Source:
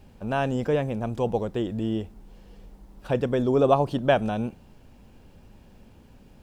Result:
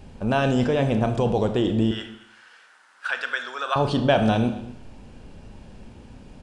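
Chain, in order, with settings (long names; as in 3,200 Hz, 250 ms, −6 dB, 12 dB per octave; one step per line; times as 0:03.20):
dynamic equaliser 4,200 Hz, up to +7 dB, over −51 dBFS, Q 1.3
in parallel at −2 dB: compressor whose output falls as the input rises −27 dBFS, ratio −0.5
0:01.91–0:03.76: on the sum: high-pass with resonance 1,500 Hz, resonance Q 5.5
single-tap delay 234 ms −21.5 dB
on a send at −7 dB: convolution reverb RT60 0.70 s, pre-delay 25 ms
on the sum: downsampling to 22,050 Hz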